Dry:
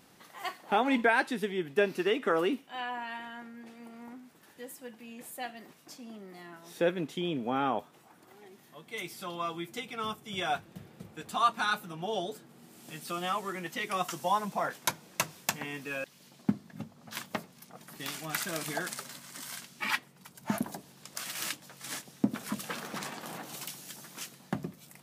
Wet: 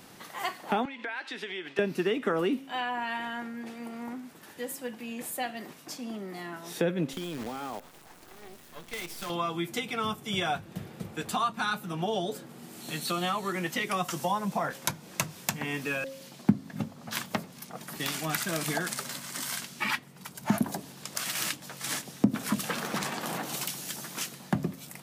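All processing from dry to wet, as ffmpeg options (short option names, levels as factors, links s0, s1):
-filter_complex "[0:a]asettb=1/sr,asplit=3[s0][s1][s2];[s0]atrim=end=0.854[s3];[s1]atrim=start=0.85:end=1.79,asetpts=PTS-STARTPTS,afade=t=in:d=0.004:c=qsin,afade=t=out:st=0.936:d=0.004:c=qsin,tiltshelf=f=1200:g=-8,acompressor=threshold=0.0112:ratio=10:attack=3.2:release=140:knee=1:detection=peak,highpass=280,lowpass=3500[s4];[s2]atrim=start=1.786[s5];[s3][s4]acrossfade=d=0.004:c1=hsin:c2=qsin[s6];[s6][s5]acrossfade=d=0.004:c1=qsin:c2=hsin,asettb=1/sr,asplit=3[s7][s8][s9];[s7]atrim=end=7.134[s10];[s8]atrim=start=7.13:end=9.3,asetpts=PTS-STARTPTS,afade=t=in:d=0.004:c=qsin,afade=t=out:st=2.166:d=0.004:c=qsin,acrusher=bits=7:dc=4:mix=0:aa=0.000001,acompressor=threshold=0.01:ratio=12:attack=3.2:release=140:knee=1:detection=peak[s11];[s9]atrim=start=9.296[s12];[s10][s11]acrossfade=d=0.004:c1=hsin:c2=qsin[s13];[s13][s12]acrossfade=d=0.004:c1=qsin:c2=hsin,asettb=1/sr,asplit=3[s14][s15][s16];[s14]atrim=end=12.814[s17];[s15]atrim=start=12.81:end=13.52,asetpts=PTS-STARTPTS,afade=t=in:d=0.004:c=qsin,afade=t=out:st=0.706:d=0.004:c=qsin,equalizer=f=4200:t=o:w=0.24:g=13,bandreject=f=4900:w=5.8[s18];[s16]atrim=start=13.516[s19];[s17][s18]acrossfade=d=0.004:c1=hsin:c2=qsin[s20];[s20][s19]acrossfade=d=0.004:c1=qsin:c2=hsin,bandreject=f=269.2:t=h:w=4,bandreject=f=538.4:t=h:w=4,acrossover=split=220[s21][s22];[s22]acompressor=threshold=0.0126:ratio=3[s23];[s21][s23]amix=inputs=2:normalize=0,volume=2.66"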